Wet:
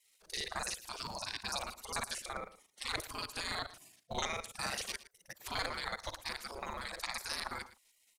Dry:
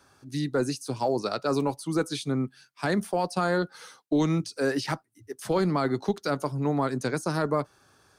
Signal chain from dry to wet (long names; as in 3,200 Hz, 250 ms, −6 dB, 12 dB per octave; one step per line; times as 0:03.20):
reversed piece by piece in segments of 37 ms
gate on every frequency bin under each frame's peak −20 dB weak
single-tap delay 113 ms −16.5 dB
level +3.5 dB